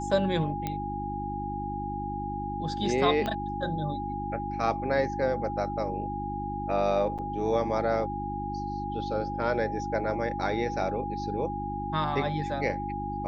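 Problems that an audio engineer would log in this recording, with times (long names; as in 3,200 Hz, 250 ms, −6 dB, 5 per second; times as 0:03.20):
mains hum 50 Hz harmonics 7 −36 dBFS
whistle 820 Hz −33 dBFS
0:00.67: click −17 dBFS
0:03.26: click −17 dBFS
0:07.18–0:07.19: drop-out 7 ms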